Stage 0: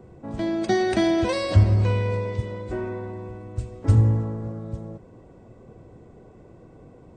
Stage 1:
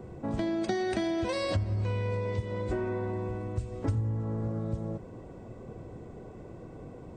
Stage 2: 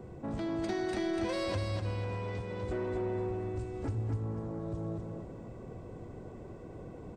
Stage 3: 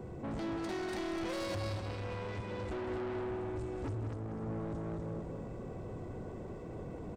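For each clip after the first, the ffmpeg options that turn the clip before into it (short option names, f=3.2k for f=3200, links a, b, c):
-af "acompressor=threshold=-31dB:ratio=6,volume=3dB"
-af "asoftclip=type=tanh:threshold=-27dB,aecho=1:1:248|496|744|992:0.631|0.215|0.0729|0.0248,volume=-2.5dB"
-filter_complex "[0:a]asoftclip=type=tanh:threshold=-39dB,asplit=2[a][b];[b]adelay=186.6,volume=-7dB,highshelf=f=4k:g=-4.2[c];[a][c]amix=inputs=2:normalize=0,volume=3dB"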